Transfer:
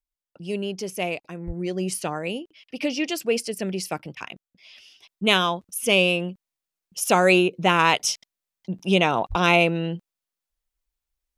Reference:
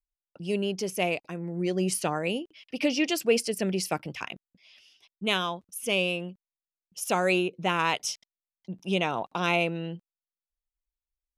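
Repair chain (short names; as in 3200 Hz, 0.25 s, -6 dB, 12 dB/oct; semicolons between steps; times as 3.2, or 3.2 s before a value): de-plosive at 1.46/9.29; interpolate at 4.15, 15 ms; gain correction -7.5 dB, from 4.58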